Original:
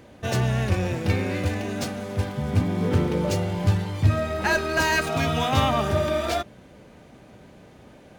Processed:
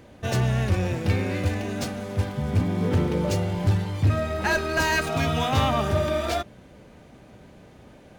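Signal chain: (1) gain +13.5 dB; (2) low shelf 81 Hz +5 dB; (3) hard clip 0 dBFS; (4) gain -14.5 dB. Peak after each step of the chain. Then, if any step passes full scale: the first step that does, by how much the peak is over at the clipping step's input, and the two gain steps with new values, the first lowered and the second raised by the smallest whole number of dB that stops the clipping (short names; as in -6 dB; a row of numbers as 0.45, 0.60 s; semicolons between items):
+6.0, +8.0, 0.0, -14.5 dBFS; step 1, 8.0 dB; step 1 +5.5 dB, step 4 -6.5 dB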